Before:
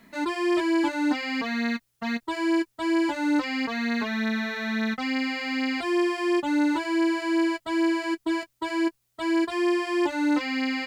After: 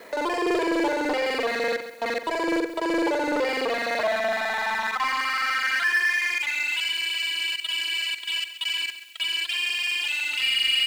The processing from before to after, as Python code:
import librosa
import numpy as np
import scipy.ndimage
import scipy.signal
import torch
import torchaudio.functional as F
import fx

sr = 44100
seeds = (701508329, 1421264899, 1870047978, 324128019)

p1 = fx.local_reverse(x, sr, ms=42.0)
p2 = fx.peak_eq(p1, sr, hz=230.0, db=-4.0, octaves=2.2)
p3 = np.clip(10.0 ** (26.0 / 20.0) * p2, -1.0, 1.0) / 10.0 ** (26.0 / 20.0)
p4 = p2 + (p3 * librosa.db_to_amplitude(-9.0))
p5 = fx.filter_sweep_highpass(p4, sr, from_hz=490.0, to_hz=2800.0, start_s=3.66, end_s=6.86, q=7.6)
p6 = fx.power_curve(p5, sr, exponent=0.7)
p7 = p6 + fx.echo_feedback(p6, sr, ms=134, feedback_pct=37, wet_db=-12.0, dry=0)
y = p7 * librosa.db_to_amplitude(-3.5)